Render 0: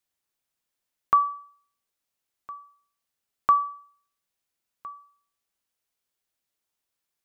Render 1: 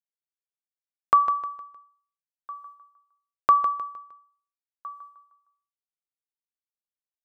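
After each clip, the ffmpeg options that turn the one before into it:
-filter_complex "[0:a]agate=range=-33dB:threshold=-50dB:ratio=3:detection=peak,equalizer=f=510:w=1.2:g=8.5,asplit=2[a][b];[b]aecho=0:1:154|308|462|616:0.316|0.114|0.041|0.0148[c];[a][c]amix=inputs=2:normalize=0"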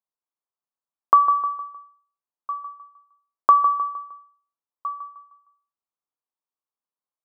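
-af "highpass=190,highshelf=f=1.6k:t=q:w=3:g=-12.5,acompressor=threshold=-22dB:ratio=1.5,volume=2dB"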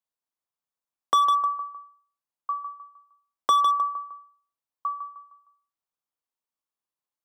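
-filter_complex "[0:a]bandreject=f=410:w=12,acrossover=split=480|690[a][b][c];[c]volume=19.5dB,asoftclip=hard,volume=-19.5dB[d];[a][b][d]amix=inputs=3:normalize=0"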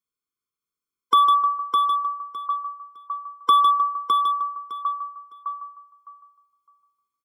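-filter_complex "[0:a]asplit=2[a][b];[b]aecho=0:1:609|1218|1827:0.562|0.101|0.0182[c];[a][c]amix=inputs=2:normalize=0,afftfilt=real='re*eq(mod(floor(b*sr/1024/510),2),0)':imag='im*eq(mod(floor(b*sr/1024/510),2),0)':win_size=1024:overlap=0.75,volume=4dB"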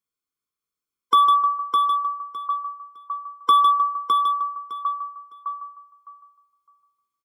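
-filter_complex "[0:a]asplit=2[a][b];[b]adelay=15,volume=-11dB[c];[a][c]amix=inputs=2:normalize=0"

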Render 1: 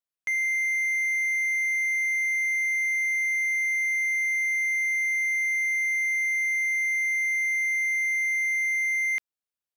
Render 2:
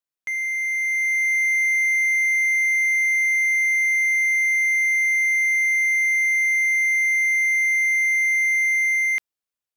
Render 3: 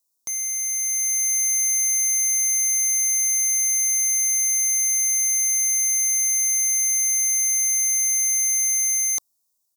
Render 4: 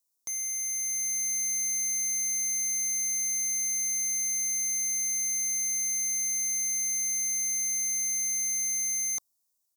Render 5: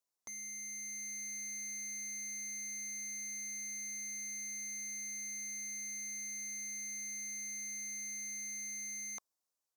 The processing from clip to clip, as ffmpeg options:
-af "dynaudnorm=f=270:g=7:m=6dB"
-af "firequalizer=gain_entry='entry(1100,0);entry(1800,-28);entry(2600,-20);entry(3800,1);entry(5800,11);entry(15000,13)':delay=0.05:min_phase=1,volume=6dB"
-af "asoftclip=type=tanh:threshold=-21.5dB,volume=-4.5dB"
-filter_complex "[0:a]asplit=2[a][b];[b]highpass=f=720:p=1,volume=9dB,asoftclip=type=tanh:threshold=-26dB[c];[a][c]amix=inputs=2:normalize=0,lowpass=f=1.4k:p=1,volume=-6dB,volume=-2dB"

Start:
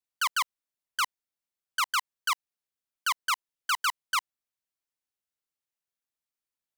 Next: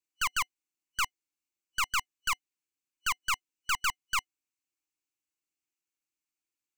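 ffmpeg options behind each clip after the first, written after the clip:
-af "superequalizer=6b=3.16:8b=0.251:12b=2.24:14b=1.41:15b=2.24,aeval=exprs='(tanh(12.6*val(0)+0.7)-tanh(0.7))/12.6':c=same"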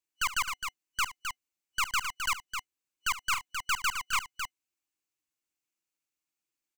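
-af "aecho=1:1:69|262:0.178|0.473"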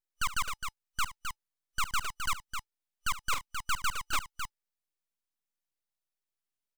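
-af "aeval=exprs='abs(val(0))':c=same"

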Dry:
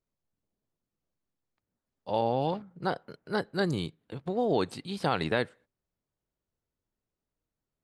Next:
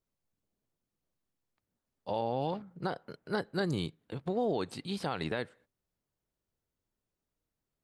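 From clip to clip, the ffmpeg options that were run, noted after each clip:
-af "alimiter=limit=-22dB:level=0:latency=1:release=195"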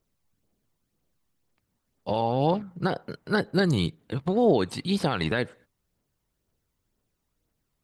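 -af "aphaser=in_gain=1:out_gain=1:delay=1.1:decay=0.36:speed=2:type=triangular,volume=8dB"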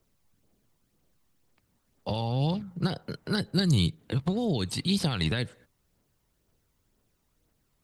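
-filter_complex "[0:a]acrossover=split=170|3000[a][b][c];[b]acompressor=threshold=-39dB:ratio=4[d];[a][d][c]amix=inputs=3:normalize=0,volume=5dB"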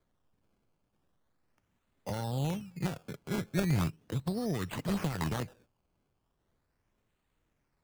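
-af "acrusher=samples=16:mix=1:aa=0.000001:lfo=1:lforange=16:lforate=0.38,volume=-5.5dB"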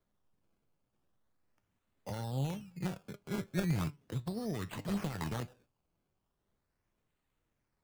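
-af "flanger=delay=4.9:depth=5:regen=80:speed=0.31:shape=sinusoidal"

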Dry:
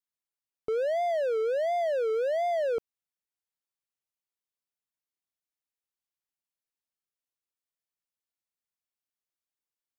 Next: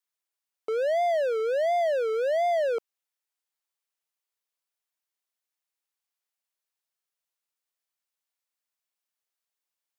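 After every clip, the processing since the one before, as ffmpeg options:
-af "highpass=500,volume=4.5dB"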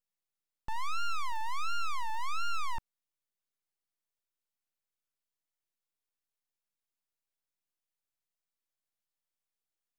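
-af "aeval=exprs='abs(val(0))':c=same,volume=-3.5dB"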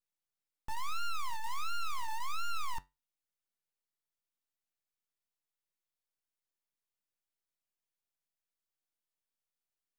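-filter_complex "[0:a]flanger=delay=9.5:depth=4.2:regen=-72:speed=0.3:shape=triangular,acrossover=split=1400[a][b];[a]acrusher=bits=4:mode=log:mix=0:aa=0.000001[c];[c][b]amix=inputs=2:normalize=0,volume=1dB"

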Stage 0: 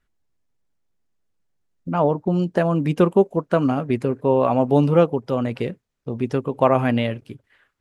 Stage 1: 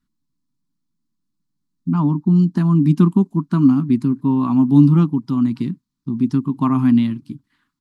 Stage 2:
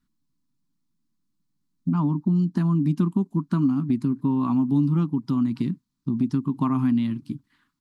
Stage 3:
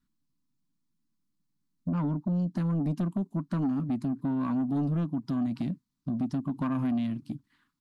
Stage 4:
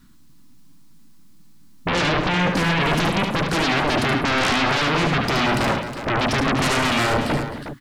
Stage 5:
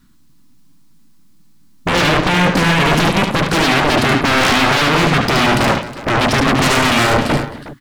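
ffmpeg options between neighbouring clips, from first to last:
-af "firequalizer=gain_entry='entry(100,0);entry(150,12);entry(290,13);entry(490,-26);entry(1000,4);entry(1600,-5);entry(2700,-5);entry(4200,7);entry(6100,3)':delay=0.05:min_phase=1,volume=-4dB"
-af "acompressor=threshold=-21dB:ratio=3"
-af "asoftclip=type=tanh:threshold=-20dB,volume=-3.5dB"
-af "aeval=exprs='0.0668*sin(PI/2*6.31*val(0)/0.0668)':c=same,aecho=1:1:73|109|259|362:0.531|0.211|0.2|0.316,volume=5.5dB"
-af "aeval=exprs='0.282*(cos(1*acos(clip(val(0)/0.282,-1,1)))-cos(1*PI/2))+0.0224*(cos(7*acos(clip(val(0)/0.282,-1,1)))-cos(7*PI/2))':c=same,volume=6.5dB"

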